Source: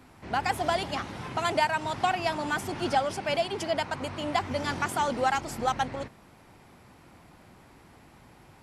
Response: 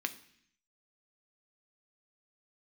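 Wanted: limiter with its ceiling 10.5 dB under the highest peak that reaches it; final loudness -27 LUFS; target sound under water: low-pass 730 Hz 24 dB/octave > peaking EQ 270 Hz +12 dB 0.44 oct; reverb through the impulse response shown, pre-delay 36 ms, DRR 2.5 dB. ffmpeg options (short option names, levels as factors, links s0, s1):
-filter_complex "[0:a]alimiter=limit=0.0708:level=0:latency=1,asplit=2[s0][s1];[1:a]atrim=start_sample=2205,adelay=36[s2];[s1][s2]afir=irnorm=-1:irlink=0,volume=0.531[s3];[s0][s3]amix=inputs=2:normalize=0,lowpass=f=730:w=0.5412,lowpass=f=730:w=1.3066,equalizer=f=270:t=o:w=0.44:g=12,volume=1.68"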